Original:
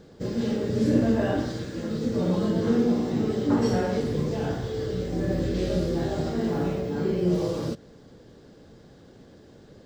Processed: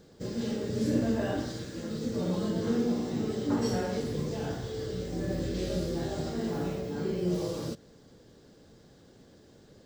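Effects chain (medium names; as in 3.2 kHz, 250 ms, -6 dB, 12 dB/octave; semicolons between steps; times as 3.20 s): treble shelf 4.9 kHz +9.5 dB; trim -6 dB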